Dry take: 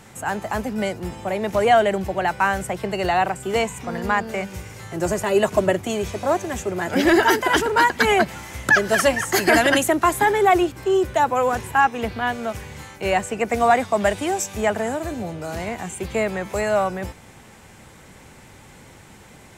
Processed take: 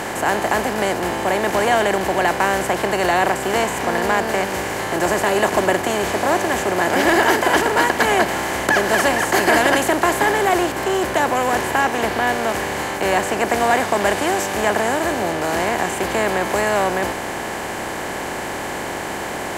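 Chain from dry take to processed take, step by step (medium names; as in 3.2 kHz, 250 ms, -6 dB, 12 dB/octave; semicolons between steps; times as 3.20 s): spectral levelling over time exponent 0.4; trim -5.5 dB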